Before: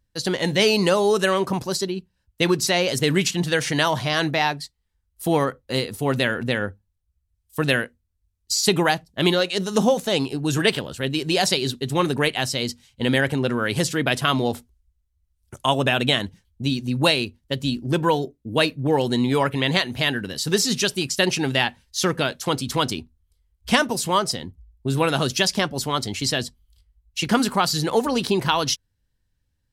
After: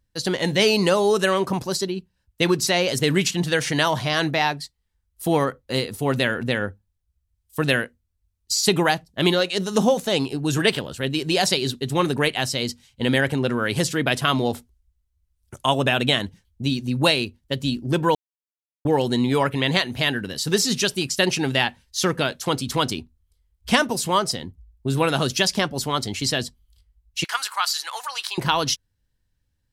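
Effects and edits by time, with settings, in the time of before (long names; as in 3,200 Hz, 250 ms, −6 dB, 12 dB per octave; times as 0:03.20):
0:18.15–0:18.85: silence
0:27.24–0:28.38: high-pass filter 1,000 Hz 24 dB per octave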